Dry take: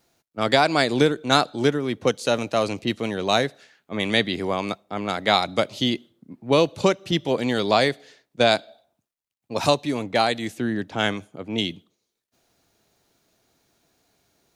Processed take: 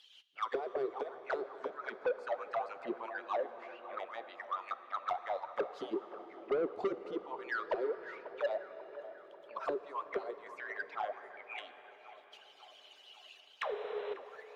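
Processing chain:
harmonic-percussive split with one part muted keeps percussive
in parallel at −2 dB: downward compressor 6 to 1, threshold −30 dBFS, peak gain reduction 16 dB
0:05.72–0:07.05: on the sum: leveller curve on the samples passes 2
upward compression, threshold −23 dBFS
0:13.61–0:14.14: sound drawn into the spectrogram noise 410–4,100 Hz −17 dBFS
shaped tremolo saw up 0.97 Hz, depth 60%
envelope filter 390–3,400 Hz, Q 14, down, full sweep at −18.5 dBFS
soft clipping −32.5 dBFS, distortion −8 dB
feedback echo with a band-pass in the loop 542 ms, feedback 62%, band-pass 910 Hz, level −13.5 dB
on a send at −12 dB: convolution reverb RT60 6.1 s, pre-delay 18 ms
on the sum: level +5 dB

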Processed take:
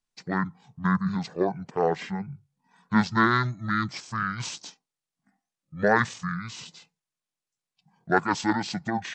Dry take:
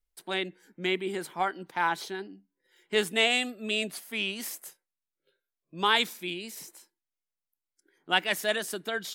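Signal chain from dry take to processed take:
low shelf with overshoot 200 Hz −8.5 dB, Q 3
pitch shifter −12 semitones
level +3 dB

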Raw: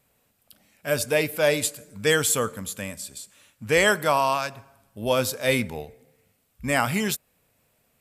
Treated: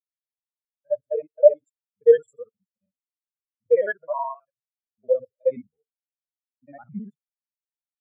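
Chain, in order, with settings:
reversed piece by piece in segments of 53 ms
every bin expanded away from the loudest bin 4 to 1
level +3 dB

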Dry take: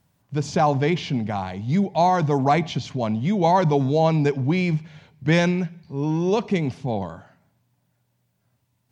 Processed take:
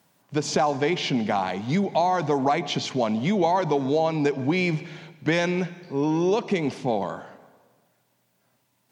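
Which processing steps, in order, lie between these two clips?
high-pass filter 260 Hz 12 dB per octave
downward compressor 5 to 1, threshold −26 dBFS, peak gain reduction 11 dB
dense smooth reverb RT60 1.4 s, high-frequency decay 0.85×, pre-delay 120 ms, DRR 18 dB
level +6.5 dB

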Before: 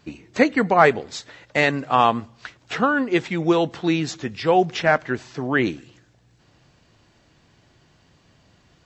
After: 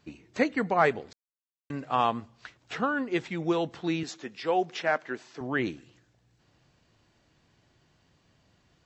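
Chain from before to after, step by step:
0:01.13–0:01.70: silence
0:04.03–0:05.41: high-pass filter 260 Hz 12 dB per octave
level −8.5 dB

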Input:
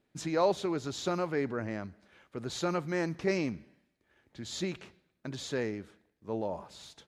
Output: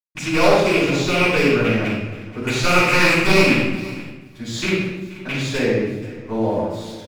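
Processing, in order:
loose part that buzzes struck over −38 dBFS, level −21 dBFS
0:02.44–0:03.41: drawn EQ curve 430 Hz 0 dB, 1,300 Hz +7 dB, 3,100 Hz +2 dB
wave folding −20.5 dBFS
on a send: repeating echo 480 ms, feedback 20%, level −17 dB
on the sum: dead-zone distortion −57.5 dBFS
rectangular room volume 440 cubic metres, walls mixed, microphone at 8.8 metres
level −2.5 dB

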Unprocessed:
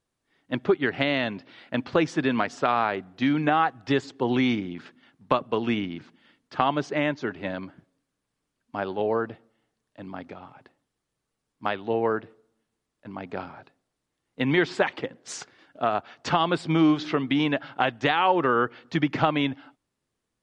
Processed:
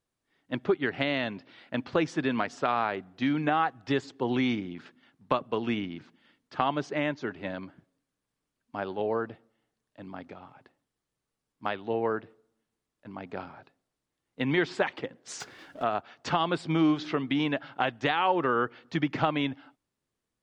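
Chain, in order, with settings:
0:15.40–0:15.83: power curve on the samples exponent 0.7
level −4 dB

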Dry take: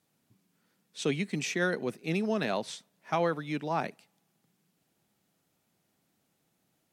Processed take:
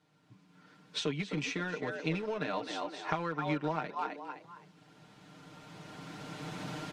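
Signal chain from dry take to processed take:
camcorder AGC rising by 11 dB per second
on a send: echo with shifted repeats 258 ms, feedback 32%, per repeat +68 Hz, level −10.5 dB
on the sum: downward compressor 8 to 1, threshold −37 dBFS, peak gain reduction 14 dB
in parallel at −11.5 dB: centre clipping without the shift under −35.5 dBFS
on the sum: low-pass filter 4,400 Hz 12 dB per octave
comb filter 6.6 ms, depth 78%
hollow resonant body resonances 1,000/1,400 Hz, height 10 dB, ringing for 45 ms
level +2.5 dB

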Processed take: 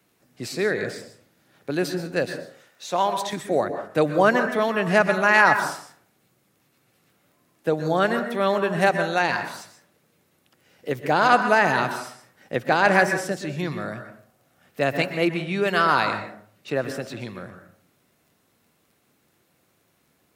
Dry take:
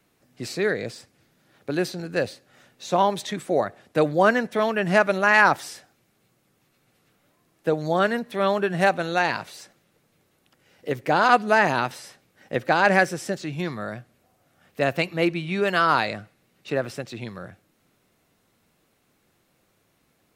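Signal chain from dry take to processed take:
0:02.25–0:03.33: low-shelf EQ 370 Hz −10.5 dB
high-pass filter 70 Hz
high-shelf EQ 11,000 Hz +4.5 dB
on a send at −7.5 dB: convolution reverb RT60 0.50 s, pre-delay 113 ms
on the sum: surface crackle 14 per second −51 dBFS

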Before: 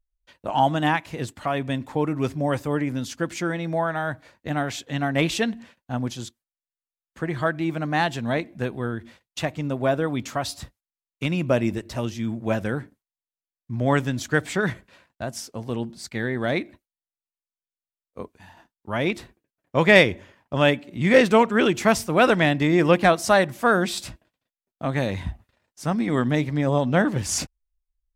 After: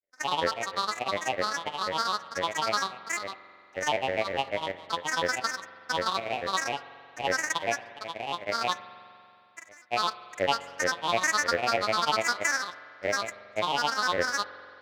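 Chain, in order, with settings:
samples sorted by size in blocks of 256 samples
harmonic and percussive parts rebalanced harmonic +8 dB
in parallel at −0.5 dB: brickwall limiter −4.5 dBFS, peak gain reduction 11 dB
on the sum: downward compressor 3 to 1, threshold −9 dBFS, peak gain reduction 8.5 dB
tempo change 1.9×
pair of resonant band-passes 1,900 Hz, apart 1.8 octaves
granular cloud, spray 34 ms, pitch spread up and down by 12 semitones
convolution reverb RT60 2.5 s, pre-delay 44 ms, DRR 14.5 dB

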